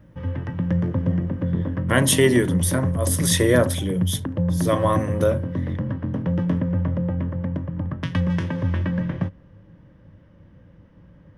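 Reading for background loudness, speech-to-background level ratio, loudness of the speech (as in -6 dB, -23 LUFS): -25.5 LUFS, 4.0 dB, -21.5 LUFS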